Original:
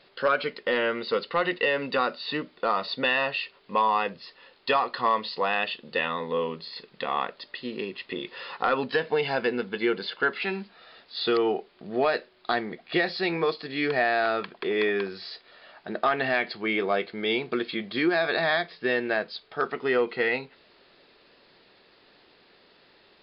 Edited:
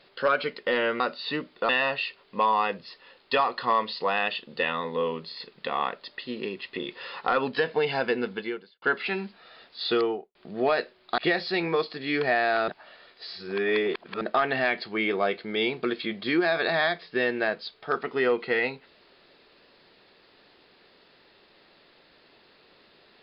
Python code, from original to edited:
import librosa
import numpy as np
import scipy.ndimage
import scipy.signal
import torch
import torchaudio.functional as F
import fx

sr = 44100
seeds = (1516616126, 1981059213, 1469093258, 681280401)

y = fx.studio_fade_out(x, sr, start_s=11.3, length_s=0.41)
y = fx.edit(y, sr, fx.cut(start_s=1.0, length_s=1.01),
    fx.cut(start_s=2.7, length_s=0.35),
    fx.fade_out_span(start_s=9.7, length_s=0.48, curve='qua'),
    fx.cut(start_s=12.54, length_s=0.33),
    fx.reverse_span(start_s=14.37, length_s=1.53), tone=tone)